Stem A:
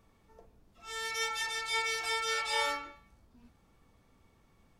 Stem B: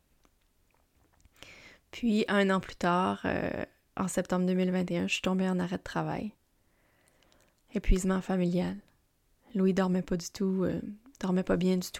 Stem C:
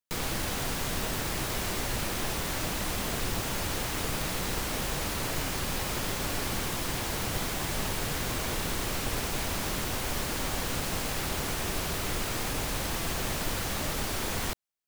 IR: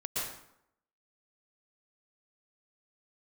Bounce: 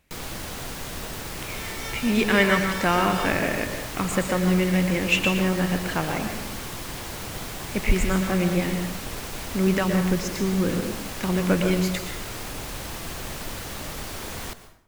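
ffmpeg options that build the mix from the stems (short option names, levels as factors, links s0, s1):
-filter_complex "[0:a]adelay=650,volume=0.596[s0];[1:a]equalizer=f=2200:w=2.1:g=10.5,volume=1.19,asplit=2[s1][s2];[s2]volume=0.531[s3];[2:a]volume=0.668,asplit=2[s4][s5];[s5]volume=0.168[s6];[3:a]atrim=start_sample=2205[s7];[s3][s6]amix=inputs=2:normalize=0[s8];[s8][s7]afir=irnorm=-1:irlink=0[s9];[s0][s1][s4][s9]amix=inputs=4:normalize=0"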